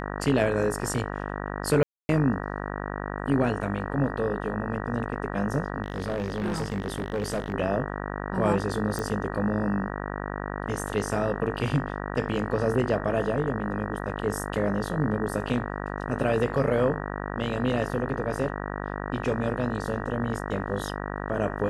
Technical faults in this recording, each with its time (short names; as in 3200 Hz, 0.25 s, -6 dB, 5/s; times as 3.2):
buzz 50 Hz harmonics 38 -33 dBFS
1.83–2.09 gap 0.26 s
5.82–7.54 clipped -24 dBFS
8.99 pop